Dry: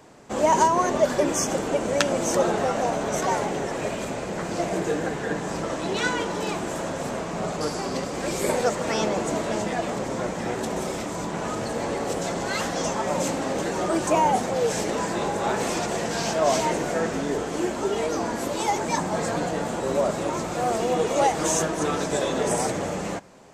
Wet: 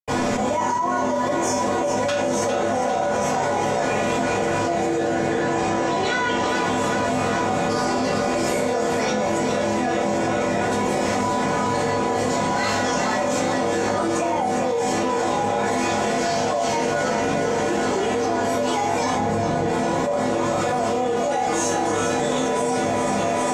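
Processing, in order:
0:05.16–0:06.40: Butterworth low-pass 8,600 Hz
0:19.07–0:19.59: spectral tilt −2 dB per octave
feedback echo with a high-pass in the loop 403 ms, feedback 62%, high-pass 180 Hz, level −8 dB
convolution reverb RT60 0.50 s, pre-delay 76 ms
envelope flattener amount 100%

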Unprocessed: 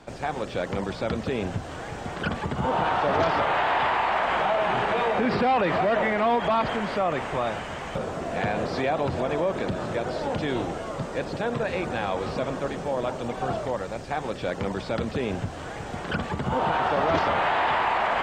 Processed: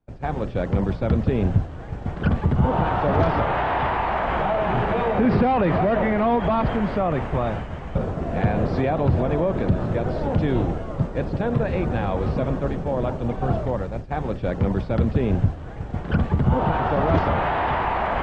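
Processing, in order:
downward expander −29 dBFS
RIAA equalisation playback

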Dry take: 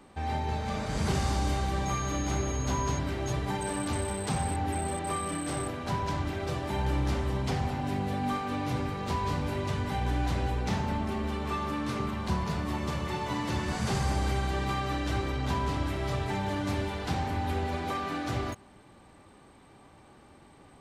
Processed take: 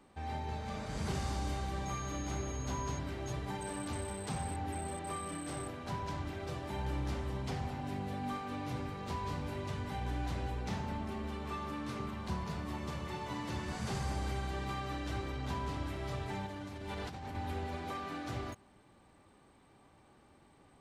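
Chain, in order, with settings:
0:16.46–0:17.35: compressor whose output falls as the input rises −35 dBFS, ratio −1
level −8 dB

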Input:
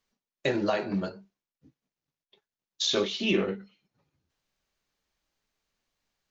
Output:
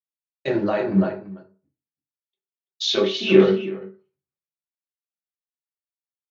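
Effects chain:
high-pass filter 90 Hz
in parallel at +2 dB: brickwall limiter −22 dBFS, peak gain reduction 8 dB
on the sum: high-frequency loss of the air 170 metres
single-tap delay 336 ms −9 dB
on a send at −4.5 dB: convolution reverb RT60 0.45 s, pre-delay 3 ms
on the sum: multiband upward and downward expander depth 100%
level −2 dB

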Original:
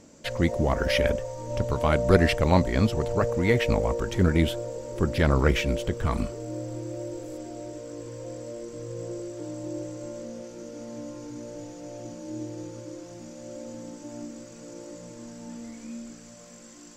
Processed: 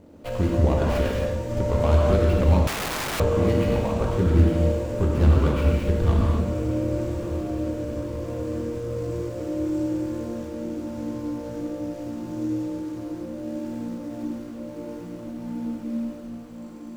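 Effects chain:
running median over 25 samples
downward compressor 4 to 1, threshold −25 dBFS, peak gain reduction 11 dB
parametric band 78 Hz +9 dB 0.22 octaves
feedback delay with all-pass diffusion 1,033 ms, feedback 62%, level −13 dB
reverb whose tail is shaped and stops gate 300 ms flat, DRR −2.5 dB
0:02.67–0:03.20: wrap-around overflow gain 26 dB
level +2.5 dB

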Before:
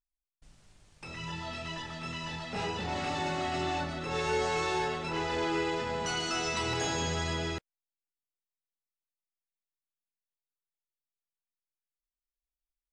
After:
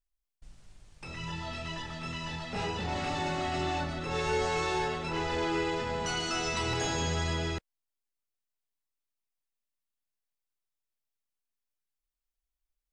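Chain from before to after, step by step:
low-shelf EQ 66 Hz +9.5 dB

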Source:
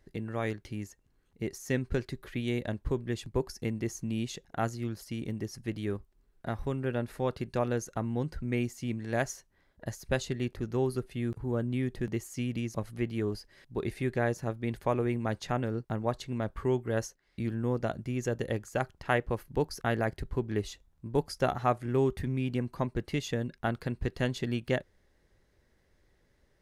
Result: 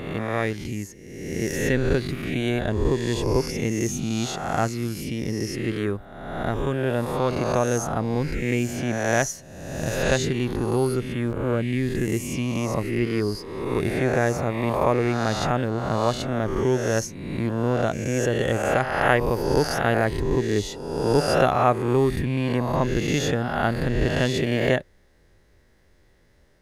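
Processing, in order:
peak hold with a rise ahead of every peak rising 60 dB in 1.23 s
level +6 dB

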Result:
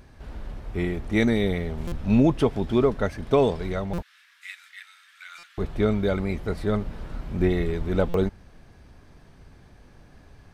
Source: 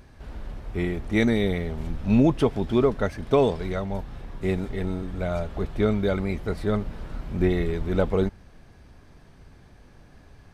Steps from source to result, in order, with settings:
0:04.02–0:05.58: Butterworth high-pass 1,500 Hz 36 dB per octave
buffer that repeats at 0:01.87/0:03.93/0:05.38/0:08.09, samples 256, times 8

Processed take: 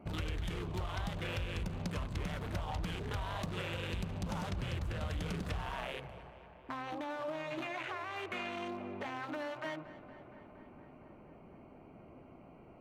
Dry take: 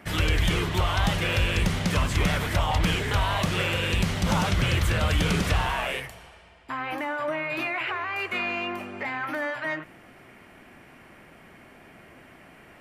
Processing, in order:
adaptive Wiener filter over 25 samples
downward compressor 3 to 1, threshold −36 dBFS, peak gain reduction 13 dB
on a send: tape delay 232 ms, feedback 83%, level −15 dB, low-pass 3,600 Hz
on the sum: level −2.5 dB

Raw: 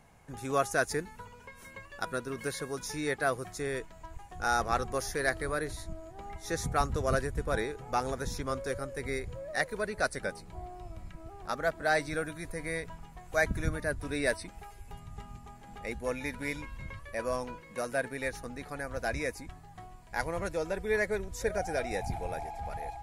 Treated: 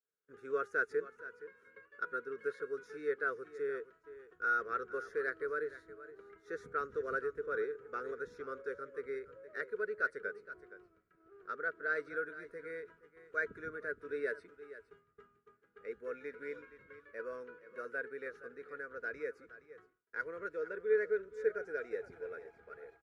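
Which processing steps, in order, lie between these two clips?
pair of resonant band-passes 790 Hz, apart 1.7 octaves
single-tap delay 469 ms −15 dB
downward expander −58 dBFS
level +1 dB

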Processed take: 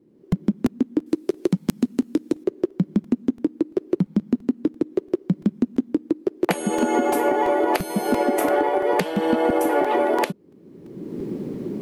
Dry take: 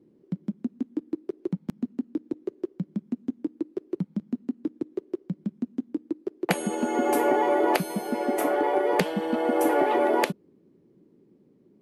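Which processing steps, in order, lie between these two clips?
camcorder AGC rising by 31 dB per second
0:01.06–0:02.44: parametric band 11,000 Hz +15 dB 2.7 octaves
regular buffer underruns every 0.34 s, samples 128, repeat, from 0:00.32

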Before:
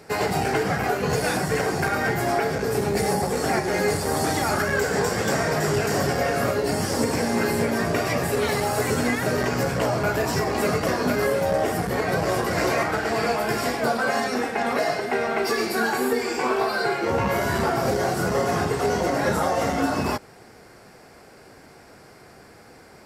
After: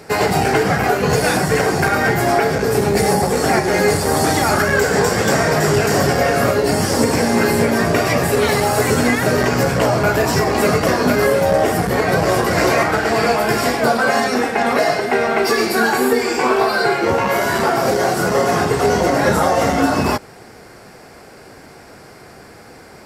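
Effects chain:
0:17.13–0:18.69: high-pass filter 360 Hz → 130 Hz 6 dB per octave
level +7.5 dB

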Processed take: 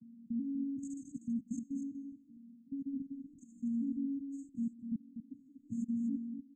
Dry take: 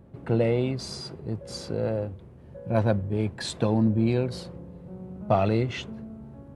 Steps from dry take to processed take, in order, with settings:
vocoder with an arpeggio as carrier minor triad, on A#3, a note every 380 ms
high-shelf EQ 3,500 Hz −3 dB
reversed playback
downward compressor 16 to 1, threshold −33 dBFS, peak gain reduction 15.5 dB
reversed playback
four-comb reverb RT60 0.82 s, combs from 31 ms, DRR 10.5 dB
output level in coarse steps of 21 dB
linear-phase brick-wall band-stop 290–6,300 Hz
on a send: single-tap delay 243 ms −8 dB
on the sum: level +9 dB

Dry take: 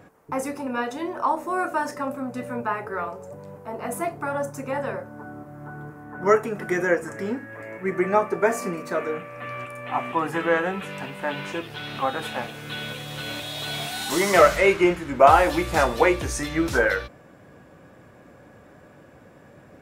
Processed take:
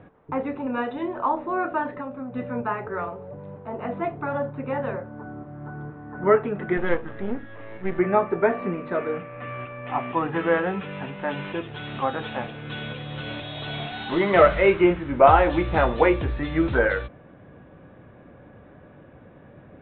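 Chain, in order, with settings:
0:06.77–0:07.99: gain on one half-wave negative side −12 dB
Butterworth low-pass 3,800 Hz 96 dB per octave
spectral tilt −1.5 dB per octave
0:01.88–0:02.33: downward compressor 4 to 1, threshold −30 dBFS, peak gain reduction 7 dB
level −1 dB

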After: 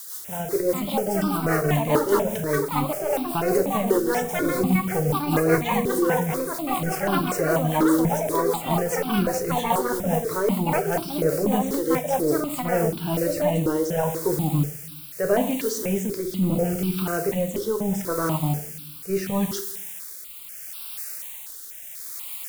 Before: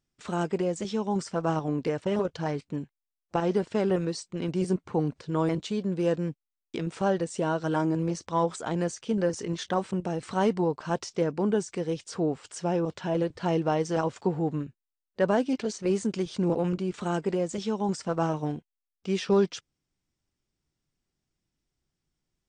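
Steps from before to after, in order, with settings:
automatic gain control gain up to 6 dB
transient designer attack −5 dB, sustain −1 dB
in parallel at −1 dB: output level in coarse steps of 13 dB
on the sum: delay with pitch and tempo change per echo 519 ms, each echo +7 semitones, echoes 2
background noise blue −32 dBFS
rectangular room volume 82 cubic metres, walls mixed, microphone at 0.41 metres
rotating-speaker cabinet horn 5 Hz, later 0.75 Hz, at 0:12.44
step-sequenced phaser 4.1 Hz 670–1,900 Hz

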